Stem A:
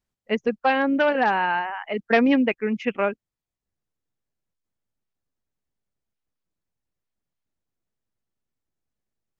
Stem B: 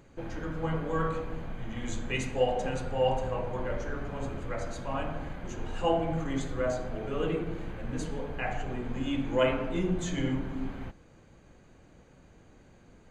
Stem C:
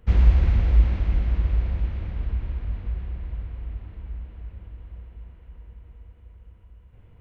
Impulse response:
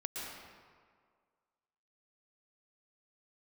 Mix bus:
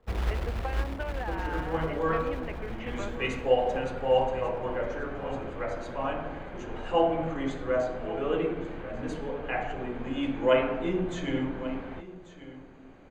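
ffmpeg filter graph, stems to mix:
-filter_complex "[0:a]acompressor=threshold=-26dB:ratio=6,volume=-7.5dB[a];[1:a]lowshelf=f=340:g=7.5,adelay=1100,volume=2dB,asplit=2[b][c];[c]volume=-16dB[d];[2:a]lowpass=1.2k,acrusher=bits=6:mode=log:mix=0:aa=0.000001,volume=0dB[e];[d]aecho=0:1:1138:1[f];[a][b][e][f]amix=inputs=4:normalize=0,acrossover=split=300 3900:gain=0.2 1 0.251[g][h][i];[g][h][i]amix=inputs=3:normalize=0"

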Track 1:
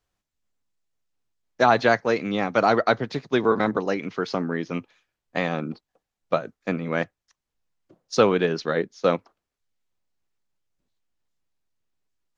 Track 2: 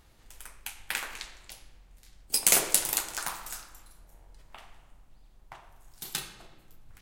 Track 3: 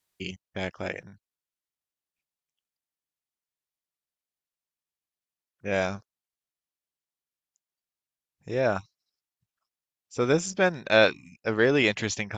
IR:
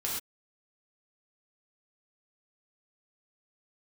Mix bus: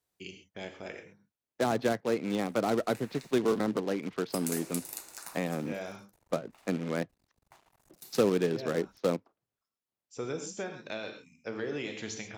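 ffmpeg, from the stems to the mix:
-filter_complex "[0:a]acrusher=bits=2:mode=log:mix=0:aa=0.000001,adynamicsmooth=sensitivity=2.5:basefreq=2.6k,volume=-1.5dB,asplit=2[a][b];[1:a]bandreject=f=3.2k:w=5.2,acrusher=bits=7:mix=0:aa=0.5,adelay=2000,volume=-8dB[c];[2:a]acompressor=threshold=-23dB:ratio=6,volume=-9.5dB,asplit=2[d][e];[e]volume=-5.5dB[f];[b]apad=whole_len=545644[g];[d][g]sidechaincompress=threshold=-24dB:ratio=8:attack=16:release=625[h];[3:a]atrim=start_sample=2205[i];[f][i]afir=irnorm=-1:irlink=0[j];[a][c][h][j]amix=inputs=4:normalize=0,highpass=f=210:p=1,equalizer=f=1.4k:t=o:w=2.4:g=-4.5,acrossover=split=450[k][l];[l]acompressor=threshold=-38dB:ratio=2[m];[k][m]amix=inputs=2:normalize=0"

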